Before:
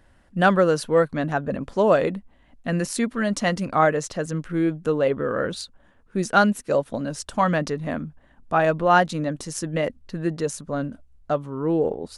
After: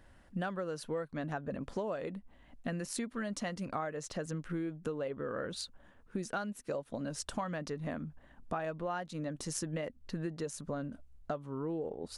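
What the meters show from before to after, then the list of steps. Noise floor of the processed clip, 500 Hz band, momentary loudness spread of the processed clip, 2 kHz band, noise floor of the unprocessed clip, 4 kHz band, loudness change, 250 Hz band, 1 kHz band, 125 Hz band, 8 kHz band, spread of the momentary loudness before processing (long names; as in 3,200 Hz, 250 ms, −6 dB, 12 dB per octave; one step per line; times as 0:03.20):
−61 dBFS, −16.5 dB, 5 LU, −17.5 dB, −57 dBFS, −11.5 dB, −16.0 dB, −14.0 dB, −18.5 dB, −13.0 dB, −9.0 dB, 11 LU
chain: downward compressor 10 to 1, threshold −31 dBFS, peak gain reduction 19.5 dB
level −3 dB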